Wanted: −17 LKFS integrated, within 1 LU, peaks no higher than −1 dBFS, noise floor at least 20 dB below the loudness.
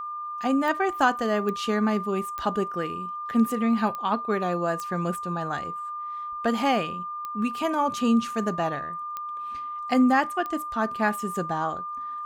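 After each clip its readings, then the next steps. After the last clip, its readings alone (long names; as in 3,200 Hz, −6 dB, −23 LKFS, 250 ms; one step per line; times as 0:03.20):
number of clicks 8; interfering tone 1,200 Hz; level of the tone −31 dBFS; integrated loudness −26.5 LKFS; sample peak −9.0 dBFS; target loudness −17.0 LKFS
→ click removal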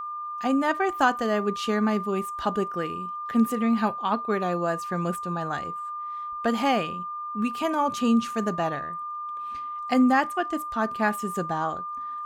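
number of clicks 0; interfering tone 1,200 Hz; level of the tone −31 dBFS
→ notch filter 1,200 Hz, Q 30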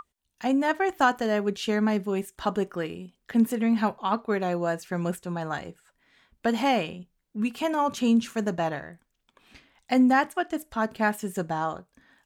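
interfering tone none found; integrated loudness −26.5 LKFS; sample peak −9.5 dBFS; target loudness −17.0 LKFS
→ level +9.5 dB
brickwall limiter −1 dBFS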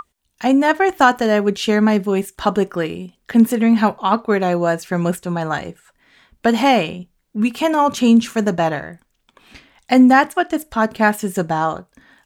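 integrated loudness −17.0 LKFS; sample peak −1.0 dBFS; background noise floor −67 dBFS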